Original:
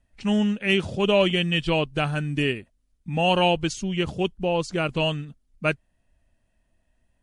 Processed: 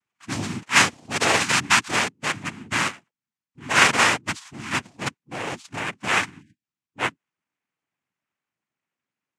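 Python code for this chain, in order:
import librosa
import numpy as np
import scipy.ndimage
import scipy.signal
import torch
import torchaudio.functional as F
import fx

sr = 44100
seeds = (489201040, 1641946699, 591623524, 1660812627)

y = fx.speed_glide(x, sr, from_pct=92, to_pct=62)
y = fx.peak_eq(y, sr, hz=2300.0, db=14.5, octaves=1.1)
y = fx.noise_vocoder(y, sr, seeds[0], bands=4)
y = fx.spec_erase(y, sr, start_s=6.41, length_s=0.23, low_hz=360.0, high_hz=1500.0)
y = fx.upward_expand(y, sr, threshold_db=-33.0, expansion=1.5)
y = y * 10.0 ** (-3.5 / 20.0)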